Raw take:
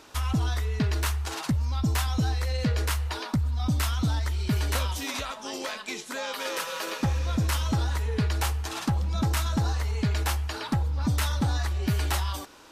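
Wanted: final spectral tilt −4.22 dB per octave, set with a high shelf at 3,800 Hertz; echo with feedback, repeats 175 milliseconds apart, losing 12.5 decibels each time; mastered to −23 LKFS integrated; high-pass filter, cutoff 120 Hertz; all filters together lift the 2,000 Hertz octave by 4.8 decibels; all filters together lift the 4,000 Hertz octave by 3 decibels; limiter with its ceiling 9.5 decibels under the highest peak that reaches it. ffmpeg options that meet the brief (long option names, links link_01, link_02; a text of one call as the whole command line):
ffmpeg -i in.wav -af "highpass=120,equalizer=frequency=2000:width_type=o:gain=6.5,highshelf=frequency=3800:gain=-8,equalizer=frequency=4000:width_type=o:gain=6.5,alimiter=limit=-23dB:level=0:latency=1,aecho=1:1:175|350|525:0.237|0.0569|0.0137,volume=10dB" out.wav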